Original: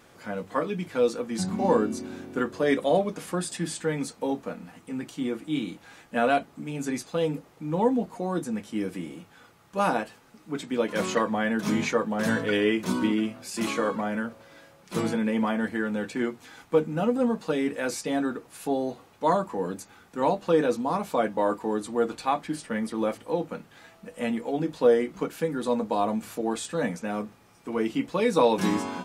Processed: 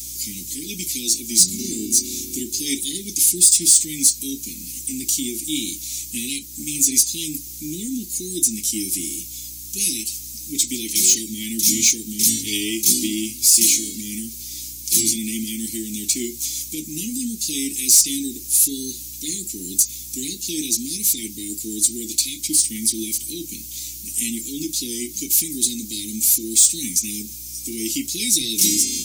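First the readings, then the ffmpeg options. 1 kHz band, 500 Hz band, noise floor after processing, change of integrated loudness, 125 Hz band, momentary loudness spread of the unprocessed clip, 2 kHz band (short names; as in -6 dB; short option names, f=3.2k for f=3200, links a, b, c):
under -40 dB, -13.0 dB, -35 dBFS, +8.5 dB, -3.5 dB, 12 LU, -3.5 dB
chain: -filter_complex "[0:a]aemphasis=mode=production:type=75fm,aeval=exprs='val(0)+0.00355*(sin(2*PI*60*n/s)+sin(2*PI*2*60*n/s)/2+sin(2*PI*3*60*n/s)/3+sin(2*PI*4*60*n/s)/4+sin(2*PI*5*60*n/s)/5)':c=same,asplit=2[a][b];[b]acompressor=threshold=-31dB:ratio=6,volume=0.5dB[c];[a][c]amix=inputs=2:normalize=0,equalizer=f=160:t=o:w=0.67:g=-8,equalizer=f=630:t=o:w=0.67:g=11,equalizer=f=6.3k:t=o:w=0.67:g=9,asoftclip=type=tanh:threshold=-5dB,aexciter=amount=2:drive=9:freq=3.7k,asuperstop=centerf=890:order=20:qfactor=0.5,volume=-1.5dB"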